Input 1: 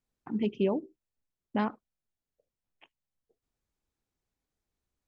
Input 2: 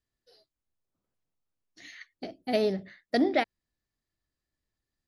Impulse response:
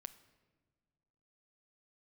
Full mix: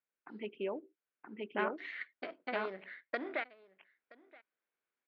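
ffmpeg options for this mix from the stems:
-filter_complex "[0:a]volume=-6dB,asplit=2[a][b];[b]volume=-4dB[c];[1:a]aeval=exprs='if(lt(val(0),0),0.447*val(0),val(0))':c=same,agate=range=-33dB:threshold=-55dB:ratio=3:detection=peak,acompressor=threshold=-37dB:ratio=4,volume=-0.5dB,asplit=2[d][e];[e]volume=-22.5dB[f];[c][f]amix=inputs=2:normalize=0,aecho=0:1:974:1[g];[a][d][g]amix=inputs=3:normalize=0,highpass=440,equalizer=f=820:t=q:w=4:g=-4,equalizer=f=1.5k:t=q:w=4:g=7,equalizer=f=2.2k:t=q:w=4:g=5,lowpass=f=3.1k:w=0.5412,lowpass=f=3.1k:w=1.3066,dynaudnorm=f=240:g=9:m=4dB"

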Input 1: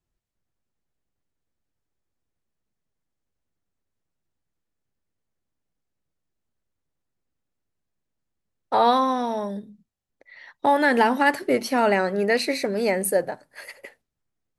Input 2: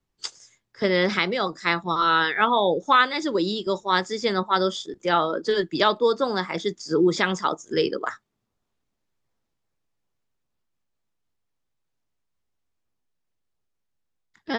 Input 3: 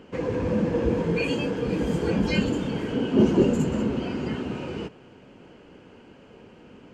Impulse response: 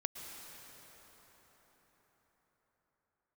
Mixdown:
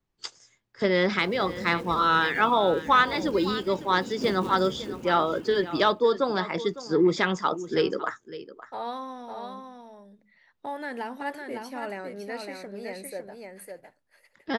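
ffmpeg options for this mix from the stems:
-filter_complex "[0:a]volume=-15.5dB,asplit=2[a][b];[b]volume=-5dB[c];[1:a]highshelf=f=6.7k:g=-11,volume=-1dB,asplit=2[d][e];[e]volume=-15.5dB[f];[2:a]bandreject=f=50:t=h:w=6,bandreject=f=100:t=h:w=6,bandreject=f=150:t=h:w=6,bandreject=f=200:t=h:w=6,bandreject=f=250:t=h:w=6,bandreject=f=300:t=h:w=6,bandreject=f=350:t=h:w=6,bandreject=f=400:t=h:w=6,bandreject=f=450:t=h:w=6,acrusher=bits=4:mode=log:mix=0:aa=0.000001,adelay=1050,volume=-14dB[g];[c][f]amix=inputs=2:normalize=0,aecho=0:1:556:1[h];[a][d][g][h]amix=inputs=4:normalize=0,asoftclip=type=tanh:threshold=-6.5dB"

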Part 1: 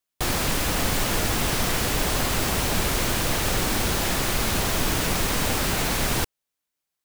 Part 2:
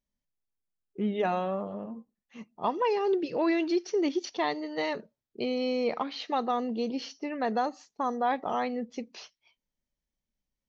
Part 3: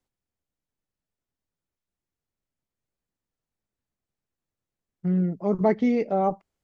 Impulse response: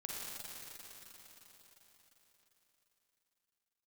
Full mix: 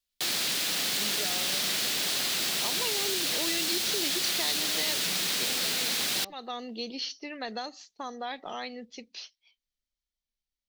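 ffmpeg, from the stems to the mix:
-filter_complex "[0:a]highpass=f=150:w=0.5412,highpass=f=150:w=1.3066,volume=-4dB[a];[1:a]dynaudnorm=f=530:g=9:m=7dB,volume=-5.5dB[b];[2:a]volume=-18dB,asplit=2[c][d];[d]apad=whole_len=471282[e];[b][e]sidechaincompress=threshold=-46dB:ratio=10:attack=5.3:release=306[f];[a][f][c]amix=inputs=3:normalize=0,equalizer=f=125:t=o:w=1:g=-11,equalizer=f=250:t=o:w=1:g=-6,equalizer=f=500:t=o:w=1:g=-5,equalizer=f=1k:t=o:w=1:g=-8,equalizer=f=4k:t=o:w=1:g=8,acrossover=split=160|3000[g][h][i];[h]acompressor=threshold=-32dB:ratio=6[j];[g][j][i]amix=inputs=3:normalize=0"

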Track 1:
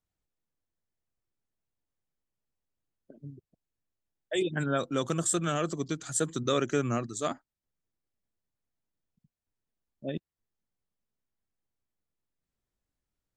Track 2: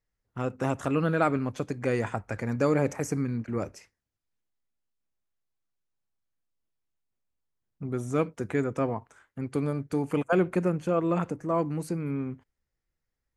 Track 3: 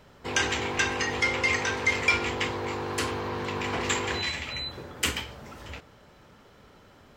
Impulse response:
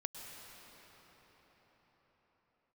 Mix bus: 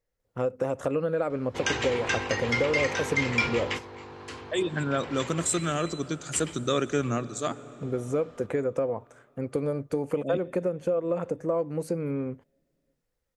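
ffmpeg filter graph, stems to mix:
-filter_complex "[0:a]adelay=200,volume=-0.5dB,asplit=2[a][b];[b]volume=-9.5dB[c];[1:a]equalizer=f=520:t=o:w=0.55:g=14,acompressor=threshold=-23dB:ratio=10,volume=-0.5dB,asplit=2[d][e];[2:a]lowpass=7.2k,adelay=1300,volume=-2.5dB[f];[e]apad=whole_len=373118[g];[f][g]sidechaingate=range=-9dB:threshold=-42dB:ratio=16:detection=peak[h];[3:a]atrim=start_sample=2205[i];[c][i]afir=irnorm=-1:irlink=0[j];[a][d][h][j]amix=inputs=4:normalize=0"

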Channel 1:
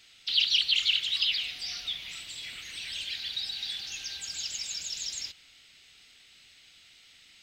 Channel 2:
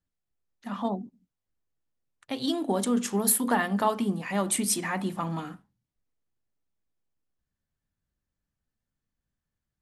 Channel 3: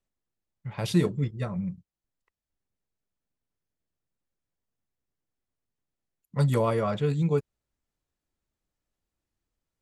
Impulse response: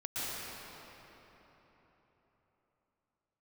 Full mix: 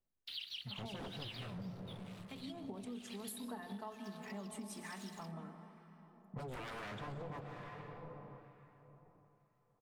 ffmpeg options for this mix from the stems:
-filter_complex "[0:a]highshelf=f=5.5k:g=-11,aeval=exprs='sgn(val(0))*max(abs(val(0))-0.00631,0)':c=same,volume=-6.5dB[a];[1:a]aecho=1:1:4.6:0.58,volume=-15dB,asplit=2[b][c];[c]volume=-12dB[d];[2:a]aeval=exprs='0.0422*(abs(mod(val(0)/0.0422+3,4)-2)-1)':c=same,volume=-5.5dB,asplit=2[e][f];[f]volume=-8.5dB[g];[3:a]atrim=start_sample=2205[h];[d][g]amix=inputs=2:normalize=0[i];[i][h]afir=irnorm=-1:irlink=0[j];[a][b][e][j]amix=inputs=4:normalize=0,highshelf=f=3.5k:g=-5.5,acrossover=split=1200[k][l];[k]aeval=exprs='val(0)*(1-0.5/2+0.5/2*cos(2*PI*1.1*n/s))':c=same[m];[l]aeval=exprs='val(0)*(1-0.5/2-0.5/2*cos(2*PI*1.1*n/s))':c=same[n];[m][n]amix=inputs=2:normalize=0,acompressor=threshold=-43dB:ratio=6"

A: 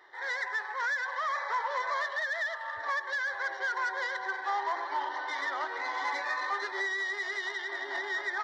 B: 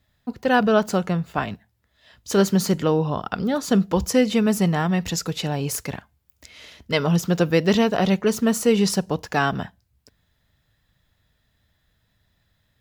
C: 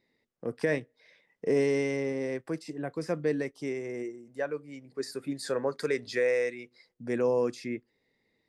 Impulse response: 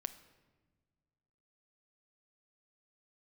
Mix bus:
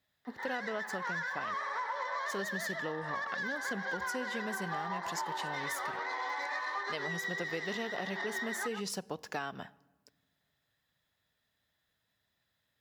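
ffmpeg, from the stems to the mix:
-filter_complex "[0:a]adelay=250,volume=1dB,asplit=2[a][b];[b]volume=-5.5dB[c];[1:a]highpass=f=380:p=1,volume=-10.5dB,asplit=2[d][e];[e]volume=-10dB[f];[2:a]highpass=780,volume=-15dB[g];[3:a]atrim=start_sample=2205[h];[f][h]afir=irnorm=-1:irlink=0[i];[c]aecho=0:1:129:1[j];[a][d][g][i][j]amix=inputs=5:normalize=0,acompressor=threshold=-34dB:ratio=5"

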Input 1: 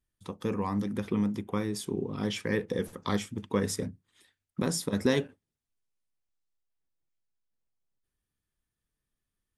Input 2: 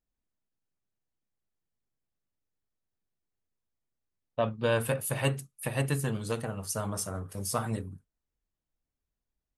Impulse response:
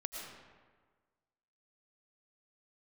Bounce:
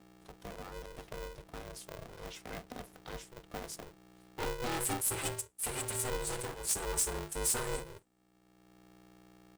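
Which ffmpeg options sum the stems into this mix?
-filter_complex "[0:a]aeval=exprs='val(0)+0.00562*(sin(2*PI*60*n/s)+sin(2*PI*2*60*n/s)/2+sin(2*PI*3*60*n/s)/3+sin(2*PI*4*60*n/s)/4+sin(2*PI*5*60*n/s)/5)':c=same,volume=-15dB[a];[1:a]equalizer=f=200:t=o:w=0.33:g=10,equalizer=f=400:t=o:w=0.33:g=-10,equalizer=f=8k:t=o:w=0.33:g=11,asoftclip=type=tanh:threshold=-29.5dB,asplit=2[b][c];[c]adelay=5.5,afreqshift=0.65[d];[b][d]amix=inputs=2:normalize=1,volume=1dB,asplit=2[e][f];[f]apad=whole_len=422325[g];[a][g]sidechaincompress=threshold=-55dB:ratio=5:attack=6.9:release=673[h];[h][e]amix=inputs=2:normalize=0,bass=f=250:g=2,treble=f=4k:g=6,acrossover=split=190[i][j];[i]acompressor=threshold=-57dB:ratio=1.5[k];[k][j]amix=inputs=2:normalize=0,aeval=exprs='val(0)*sgn(sin(2*PI*250*n/s))':c=same"

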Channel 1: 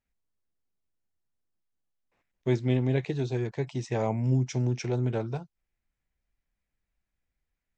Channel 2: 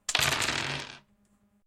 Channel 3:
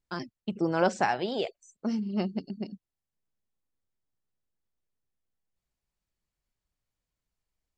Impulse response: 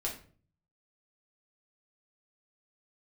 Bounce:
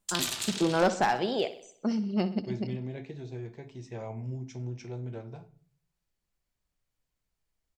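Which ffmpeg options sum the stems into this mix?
-filter_complex "[0:a]volume=-16dB,asplit=2[a][b];[b]volume=-3.5dB[c];[1:a]aexciter=amount=2.5:drive=8.3:freq=3k,volume=-16.5dB,asplit=2[d][e];[e]volume=-6.5dB[f];[2:a]volume=19.5dB,asoftclip=hard,volume=-19.5dB,volume=1.5dB,asplit=2[g][h];[h]volume=-14dB[i];[3:a]atrim=start_sample=2205[j];[c][f]amix=inputs=2:normalize=0[k];[k][j]afir=irnorm=-1:irlink=0[l];[i]aecho=0:1:63|126|189|252|315|378|441:1|0.51|0.26|0.133|0.0677|0.0345|0.0176[m];[a][d][g][l][m]amix=inputs=5:normalize=0"

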